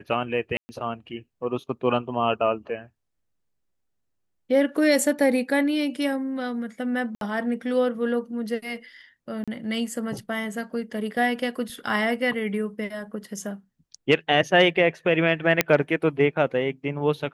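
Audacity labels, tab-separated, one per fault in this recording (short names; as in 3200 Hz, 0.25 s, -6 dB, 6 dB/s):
0.570000	0.690000	gap 0.12 s
7.150000	7.210000	gap 62 ms
9.440000	9.480000	gap 36 ms
15.610000	15.610000	pop -2 dBFS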